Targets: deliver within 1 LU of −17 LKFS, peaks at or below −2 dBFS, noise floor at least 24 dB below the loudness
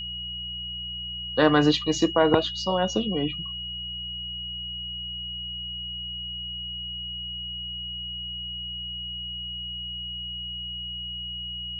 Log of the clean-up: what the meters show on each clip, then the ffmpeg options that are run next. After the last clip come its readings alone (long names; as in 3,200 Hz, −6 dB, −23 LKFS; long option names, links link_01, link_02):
mains hum 60 Hz; hum harmonics up to 180 Hz; level of the hum −41 dBFS; interfering tone 2,900 Hz; level of the tone −32 dBFS; integrated loudness −28.0 LKFS; sample peak −6.5 dBFS; target loudness −17.0 LKFS
→ -af "bandreject=frequency=60:width_type=h:width=4,bandreject=frequency=120:width_type=h:width=4,bandreject=frequency=180:width_type=h:width=4"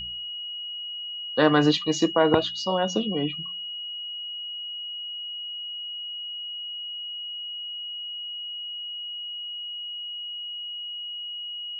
mains hum none found; interfering tone 2,900 Hz; level of the tone −32 dBFS
→ -af "bandreject=frequency=2900:width=30"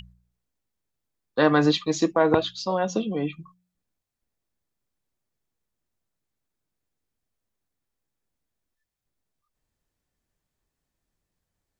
interfering tone none found; integrated loudness −23.5 LKFS; sample peak −6.5 dBFS; target loudness −17.0 LKFS
→ -af "volume=6.5dB,alimiter=limit=-2dB:level=0:latency=1"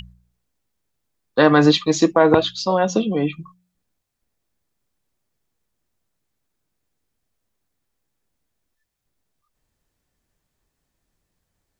integrated loudness −17.5 LKFS; sample peak −2.0 dBFS; background noise floor −77 dBFS